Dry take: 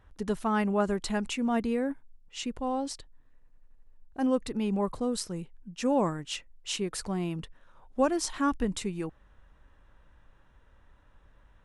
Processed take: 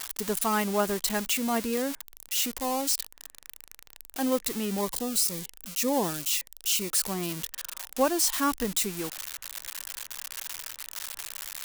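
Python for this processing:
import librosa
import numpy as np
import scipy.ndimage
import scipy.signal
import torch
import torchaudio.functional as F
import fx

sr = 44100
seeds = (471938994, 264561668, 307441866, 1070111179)

y = x + 0.5 * 10.0 ** (-22.5 / 20.0) * np.diff(np.sign(x), prepend=np.sign(x[:1]))
y = fx.low_shelf(y, sr, hz=230.0, db=-9.0)
y = fx.notch_cascade(y, sr, direction='falling', hz=1.9, at=(4.79, 6.9), fade=0.02)
y = y * librosa.db_to_amplitude(2.5)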